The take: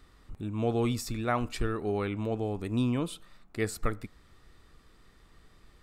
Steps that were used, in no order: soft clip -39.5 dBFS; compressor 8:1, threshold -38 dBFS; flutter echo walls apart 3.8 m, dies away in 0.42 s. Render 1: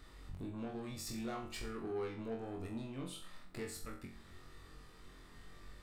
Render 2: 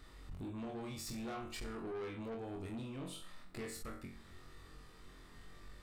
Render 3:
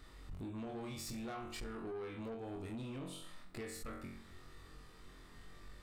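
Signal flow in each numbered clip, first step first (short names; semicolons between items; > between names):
compressor > soft clip > flutter echo; compressor > flutter echo > soft clip; flutter echo > compressor > soft clip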